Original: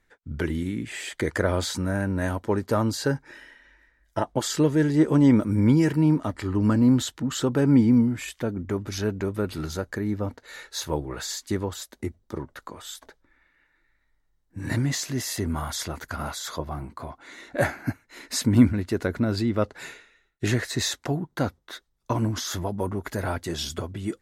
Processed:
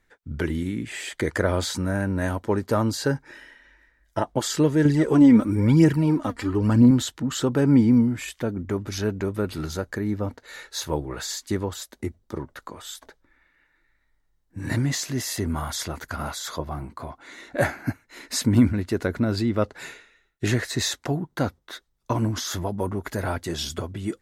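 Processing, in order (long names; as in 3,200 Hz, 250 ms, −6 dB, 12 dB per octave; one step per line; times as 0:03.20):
0:04.85–0:06.91: phase shifter 1 Hz, delay 4.5 ms, feedback 57%
boost into a limiter +7 dB
level −6 dB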